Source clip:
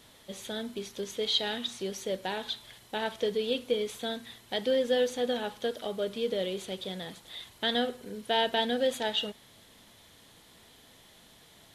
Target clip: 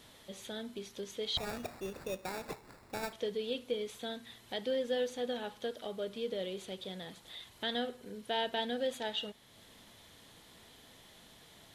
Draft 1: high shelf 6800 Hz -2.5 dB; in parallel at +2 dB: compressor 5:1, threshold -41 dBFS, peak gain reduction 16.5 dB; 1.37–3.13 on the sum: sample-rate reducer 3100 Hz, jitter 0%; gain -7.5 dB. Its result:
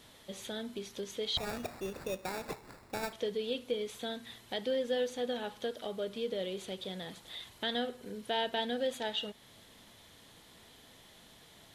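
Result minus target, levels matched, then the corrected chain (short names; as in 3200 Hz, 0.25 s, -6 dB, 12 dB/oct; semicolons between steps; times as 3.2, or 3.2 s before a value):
compressor: peak gain reduction -8.5 dB
high shelf 6800 Hz -2.5 dB; in parallel at +2 dB: compressor 5:1, threshold -51.5 dBFS, peak gain reduction 25 dB; 1.37–3.13 on the sum: sample-rate reducer 3100 Hz, jitter 0%; gain -7.5 dB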